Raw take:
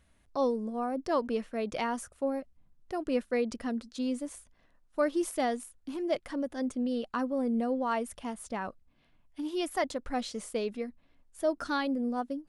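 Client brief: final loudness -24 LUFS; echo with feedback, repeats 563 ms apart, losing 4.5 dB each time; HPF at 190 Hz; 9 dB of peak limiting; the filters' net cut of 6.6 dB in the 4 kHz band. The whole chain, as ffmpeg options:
-af "highpass=190,equalizer=f=4000:t=o:g=-9,alimiter=level_in=1.33:limit=0.0631:level=0:latency=1,volume=0.75,aecho=1:1:563|1126|1689|2252|2815|3378|3941|4504|5067:0.596|0.357|0.214|0.129|0.0772|0.0463|0.0278|0.0167|0.01,volume=3.55"

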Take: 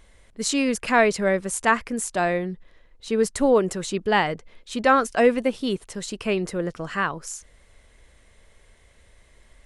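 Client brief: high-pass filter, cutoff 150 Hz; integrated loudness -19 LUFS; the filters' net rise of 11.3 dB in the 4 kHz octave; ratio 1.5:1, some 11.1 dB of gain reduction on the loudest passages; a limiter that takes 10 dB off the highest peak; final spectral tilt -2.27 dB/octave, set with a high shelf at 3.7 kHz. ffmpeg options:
-af "highpass=150,highshelf=f=3700:g=8.5,equalizer=f=4000:t=o:g=9,acompressor=threshold=0.00708:ratio=1.5,volume=4.47,alimiter=limit=0.447:level=0:latency=1"

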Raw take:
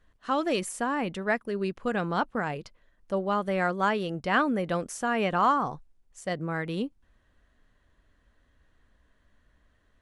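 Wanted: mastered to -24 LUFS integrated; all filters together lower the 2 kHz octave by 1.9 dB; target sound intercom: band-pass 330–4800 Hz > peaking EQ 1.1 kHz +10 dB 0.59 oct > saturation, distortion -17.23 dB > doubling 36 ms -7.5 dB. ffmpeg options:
-filter_complex "[0:a]highpass=330,lowpass=4800,equalizer=f=1100:t=o:w=0.59:g=10,equalizer=f=2000:t=o:g=-6,asoftclip=threshold=0.224,asplit=2[s0][s1];[s1]adelay=36,volume=0.422[s2];[s0][s2]amix=inputs=2:normalize=0,volume=1.41"

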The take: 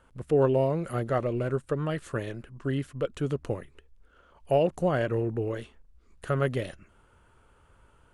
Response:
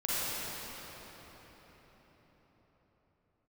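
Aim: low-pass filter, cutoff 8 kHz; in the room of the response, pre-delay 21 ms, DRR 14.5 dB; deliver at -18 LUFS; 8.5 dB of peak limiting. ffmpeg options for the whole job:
-filter_complex "[0:a]lowpass=8000,alimiter=limit=0.1:level=0:latency=1,asplit=2[s0][s1];[1:a]atrim=start_sample=2205,adelay=21[s2];[s1][s2]afir=irnorm=-1:irlink=0,volume=0.0631[s3];[s0][s3]amix=inputs=2:normalize=0,volume=4.73"

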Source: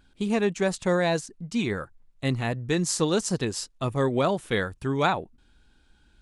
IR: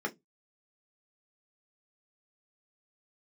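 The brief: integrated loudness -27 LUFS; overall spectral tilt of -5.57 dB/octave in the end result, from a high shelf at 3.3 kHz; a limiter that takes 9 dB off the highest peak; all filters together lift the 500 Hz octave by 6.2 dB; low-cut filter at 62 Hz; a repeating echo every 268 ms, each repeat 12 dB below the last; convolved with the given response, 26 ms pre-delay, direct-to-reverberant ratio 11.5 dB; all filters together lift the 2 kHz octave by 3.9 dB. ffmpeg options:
-filter_complex "[0:a]highpass=62,equalizer=f=500:t=o:g=7.5,equalizer=f=2000:t=o:g=7,highshelf=f=3300:g=-8.5,alimiter=limit=0.188:level=0:latency=1,aecho=1:1:268|536|804:0.251|0.0628|0.0157,asplit=2[s0][s1];[1:a]atrim=start_sample=2205,adelay=26[s2];[s1][s2]afir=irnorm=-1:irlink=0,volume=0.141[s3];[s0][s3]amix=inputs=2:normalize=0,volume=0.794"

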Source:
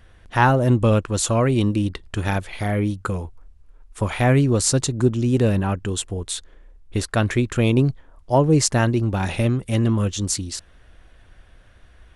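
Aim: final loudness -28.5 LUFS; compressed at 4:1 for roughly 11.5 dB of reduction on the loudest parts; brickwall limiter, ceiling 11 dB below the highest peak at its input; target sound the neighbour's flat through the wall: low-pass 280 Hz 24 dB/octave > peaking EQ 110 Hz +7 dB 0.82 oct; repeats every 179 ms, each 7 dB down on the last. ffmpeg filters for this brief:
-af "acompressor=threshold=0.0501:ratio=4,alimiter=limit=0.0668:level=0:latency=1,lowpass=f=280:w=0.5412,lowpass=f=280:w=1.3066,equalizer=f=110:t=o:w=0.82:g=7,aecho=1:1:179|358|537|716|895:0.447|0.201|0.0905|0.0407|0.0183,volume=1.12"

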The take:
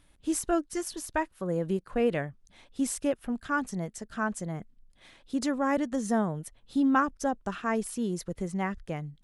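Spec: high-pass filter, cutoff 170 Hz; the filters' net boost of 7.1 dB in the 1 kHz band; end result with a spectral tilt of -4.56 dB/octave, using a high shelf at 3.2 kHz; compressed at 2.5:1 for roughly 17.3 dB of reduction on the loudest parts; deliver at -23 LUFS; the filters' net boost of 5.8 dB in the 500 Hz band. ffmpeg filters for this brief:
-af "highpass=170,equalizer=f=500:t=o:g=5,equalizer=f=1000:t=o:g=8,highshelf=f=3200:g=-5,acompressor=threshold=0.00891:ratio=2.5,volume=7.08"

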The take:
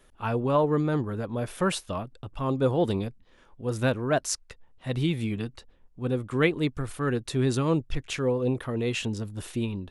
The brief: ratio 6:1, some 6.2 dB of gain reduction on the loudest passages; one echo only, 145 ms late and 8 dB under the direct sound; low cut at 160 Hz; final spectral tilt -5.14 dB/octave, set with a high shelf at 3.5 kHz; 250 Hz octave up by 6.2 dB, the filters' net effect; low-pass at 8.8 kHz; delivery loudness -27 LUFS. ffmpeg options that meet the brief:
-af "highpass=160,lowpass=8800,equalizer=f=250:t=o:g=8.5,highshelf=f=3500:g=6.5,acompressor=threshold=0.0794:ratio=6,aecho=1:1:145:0.398,volume=1.12"

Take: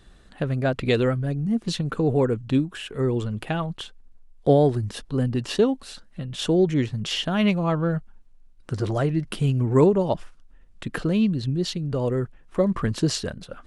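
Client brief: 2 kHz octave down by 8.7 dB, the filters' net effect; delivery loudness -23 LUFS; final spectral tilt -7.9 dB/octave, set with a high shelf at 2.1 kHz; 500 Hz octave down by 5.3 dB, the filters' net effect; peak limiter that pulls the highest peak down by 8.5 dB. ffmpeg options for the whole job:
-af "equalizer=f=500:t=o:g=-6,equalizer=f=2000:t=o:g=-6.5,highshelf=f=2100:g=-8.5,volume=1.78,alimiter=limit=0.251:level=0:latency=1"

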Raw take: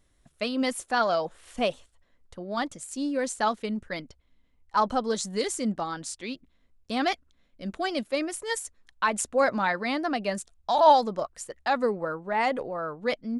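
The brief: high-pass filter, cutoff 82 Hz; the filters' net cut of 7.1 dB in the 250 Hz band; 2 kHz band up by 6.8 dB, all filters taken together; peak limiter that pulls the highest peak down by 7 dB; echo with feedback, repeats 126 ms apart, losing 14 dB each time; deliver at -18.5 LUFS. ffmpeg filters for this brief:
-af "highpass=82,equalizer=f=250:t=o:g=-8.5,equalizer=f=2000:t=o:g=8.5,alimiter=limit=0.2:level=0:latency=1,aecho=1:1:126|252:0.2|0.0399,volume=2.99"

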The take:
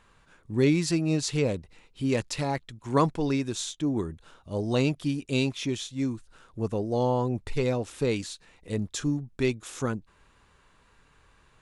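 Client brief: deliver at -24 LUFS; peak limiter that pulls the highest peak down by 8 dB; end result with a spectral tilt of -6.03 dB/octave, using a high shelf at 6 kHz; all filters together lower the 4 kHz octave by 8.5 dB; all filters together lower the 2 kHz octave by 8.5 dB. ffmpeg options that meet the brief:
-af "equalizer=f=2000:t=o:g=-8,equalizer=f=4000:t=o:g=-5.5,highshelf=f=6000:g=-7.5,volume=2.37,alimiter=limit=0.251:level=0:latency=1"

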